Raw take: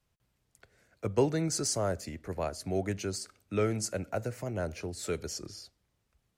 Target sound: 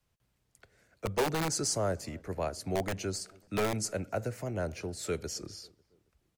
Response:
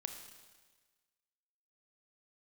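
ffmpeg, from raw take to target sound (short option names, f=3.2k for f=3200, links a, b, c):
-filter_complex "[0:a]acrossover=split=390|830|3100[a][b][c][d];[a]aeval=exprs='(mod(21.1*val(0)+1,2)-1)/21.1':c=same[e];[e][b][c][d]amix=inputs=4:normalize=0,asplit=2[f][g];[g]adelay=273,lowpass=f=1.3k:p=1,volume=-24dB,asplit=2[h][i];[i]adelay=273,lowpass=f=1.3k:p=1,volume=0.53,asplit=2[j][k];[k]adelay=273,lowpass=f=1.3k:p=1,volume=0.53[l];[f][h][j][l]amix=inputs=4:normalize=0"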